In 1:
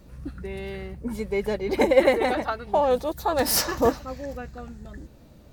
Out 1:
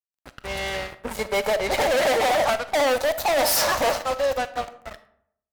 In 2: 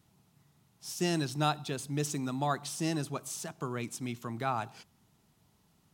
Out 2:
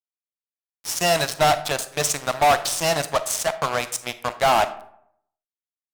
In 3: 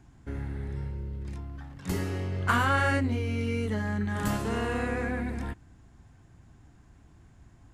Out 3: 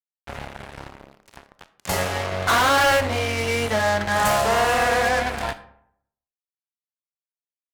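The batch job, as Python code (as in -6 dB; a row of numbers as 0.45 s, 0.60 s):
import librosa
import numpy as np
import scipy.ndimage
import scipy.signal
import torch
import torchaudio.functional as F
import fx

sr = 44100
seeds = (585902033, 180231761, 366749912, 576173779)

y = fx.low_shelf_res(x, sr, hz=450.0, db=-10.5, q=3.0)
y = fx.fuzz(y, sr, gain_db=34.0, gate_db=-41.0)
y = fx.wow_flutter(y, sr, seeds[0], rate_hz=2.1, depth_cents=17.0)
y = fx.rev_freeverb(y, sr, rt60_s=0.7, hf_ratio=0.55, predelay_ms=0, drr_db=12.0)
y = y * 10.0 ** (-24 / 20.0) / np.sqrt(np.mean(np.square(y)))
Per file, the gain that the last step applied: -6.0 dB, -0.5 dB, -3.0 dB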